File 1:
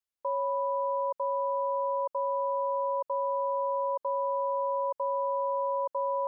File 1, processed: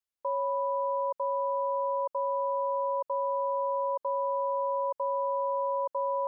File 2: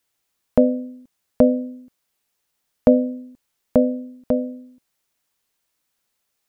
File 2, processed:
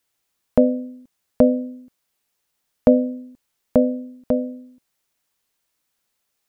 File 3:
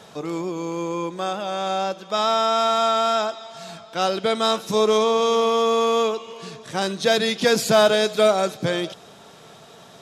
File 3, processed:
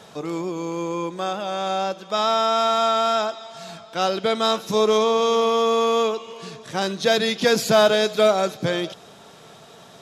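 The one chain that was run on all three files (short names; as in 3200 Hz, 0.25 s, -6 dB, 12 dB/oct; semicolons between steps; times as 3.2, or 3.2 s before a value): dynamic EQ 8600 Hz, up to -7 dB, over -55 dBFS, Q 4.4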